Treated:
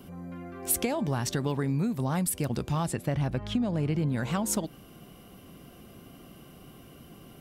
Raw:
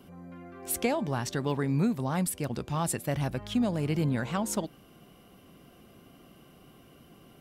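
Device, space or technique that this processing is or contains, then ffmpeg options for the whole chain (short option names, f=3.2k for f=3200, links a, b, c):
ASMR close-microphone chain: -filter_complex "[0:a]lowshelf=f=220:g=4.5,acompressor=threshold=-28dB:ratio=6,highshelf=f=6.4k:g=5,asettb=1/sr,asplit=3[a][b][c];[a]atrim=end=2.864[d];[b]atrim=start=2.86:end=4.09,asetpts=PTS-STARTPTS,afade=t=in:d=0.004:c=qsin,afade=t=out:st=1.226:d=0.004:c=qsin,aemphasis=mode=reproduction:type=50fm[e];[c]atrim=start=4.086[f];[d][e]acrossfade=d=0.004:c1=hsin:c2=qsin[g];[g][f]acrossfade=d=0.004:c1=qsin:c2=hsin,volume=3dB"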